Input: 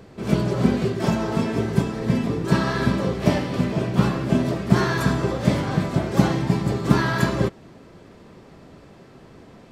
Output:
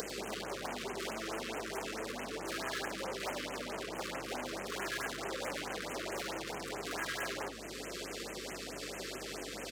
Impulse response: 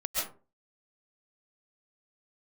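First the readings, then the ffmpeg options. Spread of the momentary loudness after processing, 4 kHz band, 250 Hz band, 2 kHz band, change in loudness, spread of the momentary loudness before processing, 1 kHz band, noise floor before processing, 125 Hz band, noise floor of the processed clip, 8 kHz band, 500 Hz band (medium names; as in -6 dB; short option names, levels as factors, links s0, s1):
4 LU, -6.5 dB, -23.5 dB, -9.5 dB, -17.5 dB, 3 LU, -12.5 dB, -47 dBFS, -31.5 dB, -44 dBFS, -3.0 dB, -14.5 dB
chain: -filter_complex "[0:a]acrossover=split=3200[s0][s1];[s1]acompressor=threshold=0.00282:ratio=4:attack=1:release=60[s2];[s0][s2]amix=inputs=2:normalize=0,equalizer=f=940:t=o:w=0.99:g=-10,flanger=delay=7.3:depth=9.2:regen=-83:speed=1.9:shape=sinusoidal,aeval=exprs='0.473*sin(PI/2*6.31*val(0)/0.473)':c=same,highshelf=f=2900:g=10,aeval=exprs='(tanh(12.6*val(0)+0.65)-tanh(0.65))/12.6':c=same,acompressor=threshold=0.0112:ratio=6,highpass=480,aeval=exprs='val(0)+0.000631*(sin(2*PI*50*n/s)+sin(2*PI*2*50*n/s)/2+sin(2*PI*3*50*n/s)/3+sin(2*PI*4*50*n/s)/4+sin(2*PI*5*50*n/s)/5)':c=same,aecho=1:1:100:0.211,afftfilt=real='re*(1-between(b*sr/1024,720*pow(4600/720,0.5+0.5*sin(2*PI*4.6*pts/sr))/1.41,720*pow(4600/720,0.5+0.5*sin(2*PI*4.6*pts/sr))*1.41))':imag='im*(1-between(b*sr/1024,720*pow(4600/720,0.5+0.5*sin(2*PI*4.6*pts/sr))/1.41,720*pow(4600/720,0.5+0.5*sin(2*PI*4.6*pts/sr))*1.41))':win_size=1024:overlap=0.75,volume=2"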